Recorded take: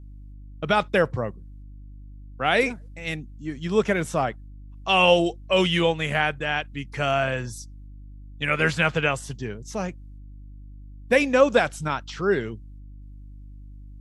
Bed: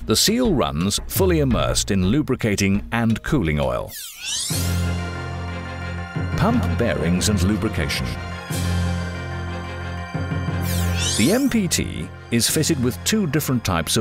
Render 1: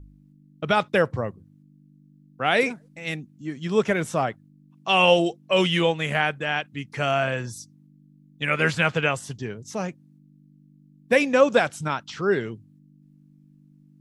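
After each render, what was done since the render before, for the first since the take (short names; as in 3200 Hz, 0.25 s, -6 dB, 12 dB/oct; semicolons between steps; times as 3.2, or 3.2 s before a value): de-hum 50 Hz, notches 2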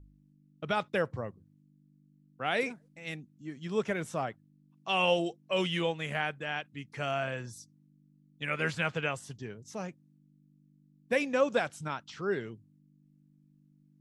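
gain -9.5 dB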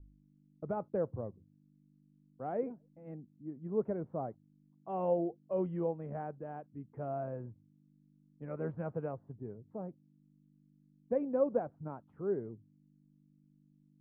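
Bessel low-pass 570 Hz, order 4; bell 150 Hz -3.5 dB 1.2 oct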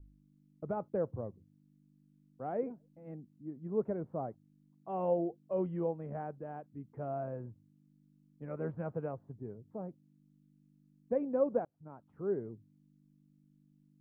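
11.65–12.24 fade in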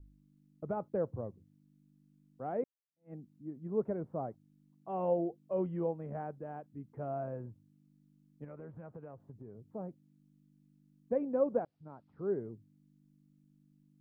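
2.64–3.13 fade in exponential; 8.44–9.7 compressor 5:1, threshold -45 dBFS; 11.58–12.31 careless resampling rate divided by 4×, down none, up filtered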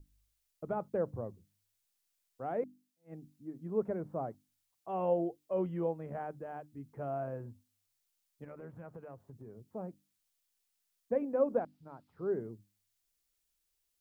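high shelf 2200 Hz +11 dB; notches 50/100/150/200/250/300 Hz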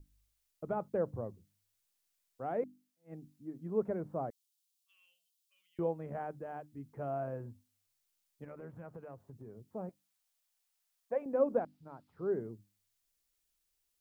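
4.3–5.79 inverse Chebyshev high-pass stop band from 860 Hz, stop band 60 dB; 9.89–11.26 resonant low shelf 470 Hz -10.5 dB, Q 1.5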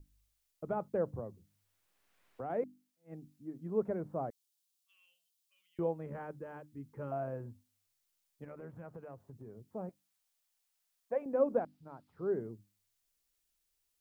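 1.19–2.5 three-band squash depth 70%; 6.06–7.12 Butterworth band-stop 690 Hz, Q 3.5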